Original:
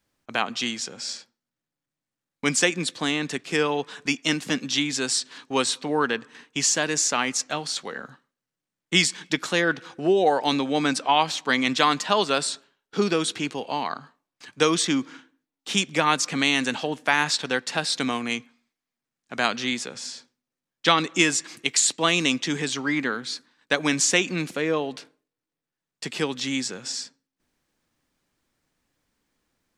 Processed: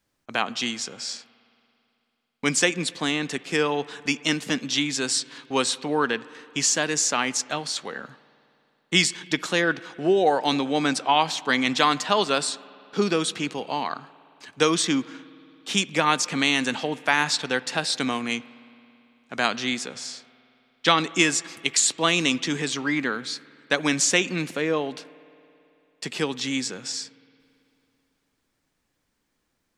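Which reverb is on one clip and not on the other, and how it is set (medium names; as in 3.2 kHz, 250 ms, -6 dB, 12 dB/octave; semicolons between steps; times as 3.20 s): spring tank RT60 2.9 s, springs 55 ms, chirp 65 ms, DRR 19.5 dB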